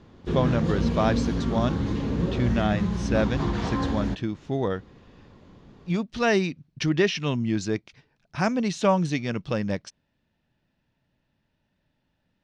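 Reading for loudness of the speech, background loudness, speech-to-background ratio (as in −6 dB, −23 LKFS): −27.0 LKFS, −27.5 LKFS, 0.5 dB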